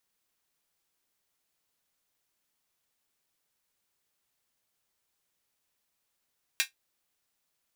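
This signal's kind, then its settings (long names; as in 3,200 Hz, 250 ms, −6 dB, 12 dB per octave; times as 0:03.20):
closed synth hi-hat, high-pass 2,000 Hz, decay 0.13 s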